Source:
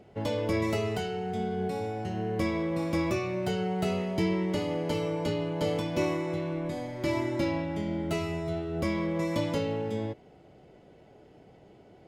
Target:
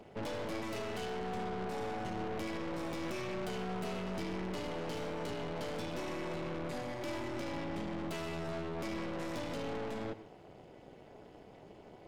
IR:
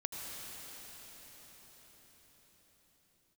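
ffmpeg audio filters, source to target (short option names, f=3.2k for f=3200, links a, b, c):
-filter_complex "[0:a]highpass=53,lowshelf=f=110:g=-10.5,alimiter=level_in=1dB:limit=-24dB:level=0:latency=1:release=263,volume=-1dB,tremolo=f=240:d=0.824,aeval=exprs='(tanh(158*val(0)+0.6)-tanh(0.6))/158':c=same,asplit=2[a][b];[1:a]atrim=start_sample=2205,afade=t=out:st=0.2:d=0.01,atrim=end_sample=9261[c];[b][c]afir=irnorm=-1:irlink=0,volume=-3.5dB[d];[a][d]amix=inputs=2:normalize=0,volume=4.5dB"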